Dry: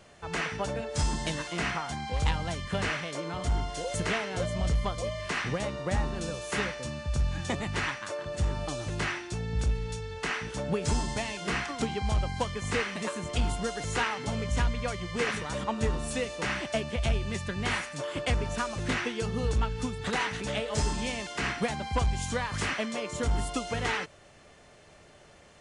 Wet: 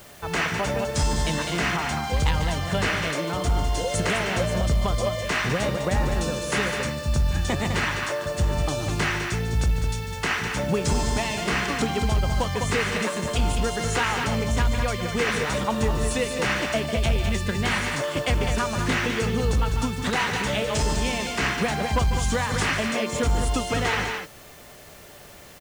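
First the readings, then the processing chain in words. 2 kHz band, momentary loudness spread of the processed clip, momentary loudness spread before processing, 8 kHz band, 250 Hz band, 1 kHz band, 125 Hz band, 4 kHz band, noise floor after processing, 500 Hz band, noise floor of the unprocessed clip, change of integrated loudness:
+7.0 dB, 3 LU, 4 LU, +7.0 dB, +7.0 dB, +6.5 dB, +6.5 dB, +7.0 dB, -46 dBFS, +6.5 dB, -55 dBFS, +6.5 dB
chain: loudspeakers at several distances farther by 50 m -12 dB, 70 m -8 dB; limiter -21.5 dBFS, peak gain reduction 5 dB; added noise white -58 dBFS; gain +7 dB

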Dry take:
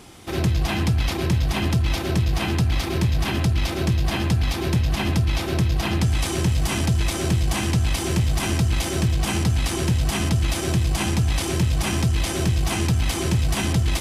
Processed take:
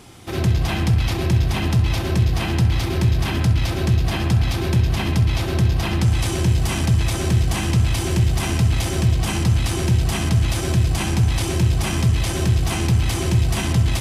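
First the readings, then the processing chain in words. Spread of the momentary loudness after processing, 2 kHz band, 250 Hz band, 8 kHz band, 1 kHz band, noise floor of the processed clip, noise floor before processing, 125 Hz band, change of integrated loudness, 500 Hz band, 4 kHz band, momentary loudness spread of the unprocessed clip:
1 LU, +0.5 dB, +1.0 dB, 0.0 dB, +0.5 dB, -24 dBFS, -27 dBFS, +4.0 dB, +2.5 dB, +1.0 dB, +0.5 dB, 1 LU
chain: bell 110 Hz +7 dB 0.31 oct; on a send: darkening echo 65 ms, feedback 75%, low-pass 4700 Hz, level -11 dB

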